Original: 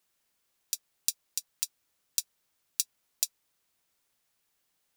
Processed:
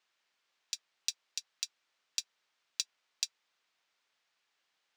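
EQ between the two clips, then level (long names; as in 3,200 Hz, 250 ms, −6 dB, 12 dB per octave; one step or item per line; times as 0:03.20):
high-pass filter 1,300 Hz 6 dB per octave
high-frequency loss of the air 160 metres
+6.5 dB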